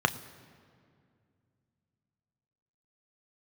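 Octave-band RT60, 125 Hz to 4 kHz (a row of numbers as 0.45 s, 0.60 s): 3.4 s, 3.2 s, 2.5 s, 2.1 s, 1.9 s, 1.5 s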